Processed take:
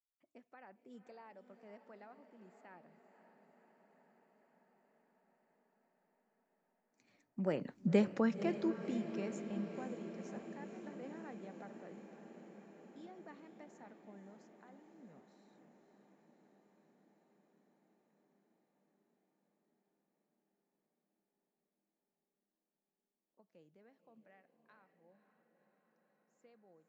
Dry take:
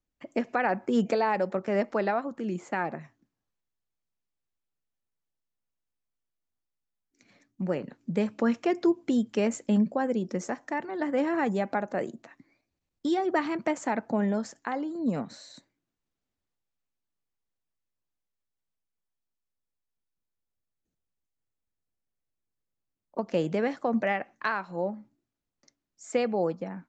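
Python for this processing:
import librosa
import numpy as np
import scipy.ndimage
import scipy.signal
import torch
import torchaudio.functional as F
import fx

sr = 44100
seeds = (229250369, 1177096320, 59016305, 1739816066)

y = fx.doppler_pass(x, sr, speed_mps=10, closest_m=2.3, pass_at_s=7.82)
y = fx.echo_diffused(y, sr, ms=530, feedback_pct=76, wet_db=-11)
y = F.gain(torch.from_numpy(y), -1.0).numpy()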